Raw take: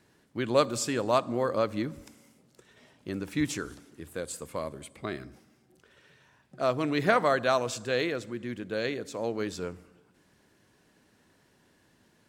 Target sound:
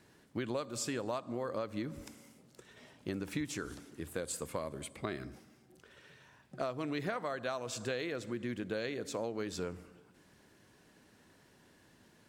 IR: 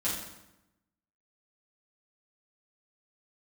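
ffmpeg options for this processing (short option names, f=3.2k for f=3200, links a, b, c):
-af "acompressor=threshold=-34dB:ratio=16,volume=1dB"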